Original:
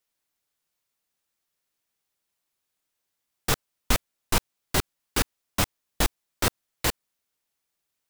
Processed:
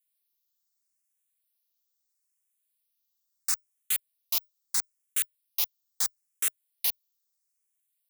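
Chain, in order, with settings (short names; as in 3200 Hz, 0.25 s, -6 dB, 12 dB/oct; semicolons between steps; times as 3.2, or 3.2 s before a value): differentiator; endless phaser +0.76 Hz; gain +2.5 dB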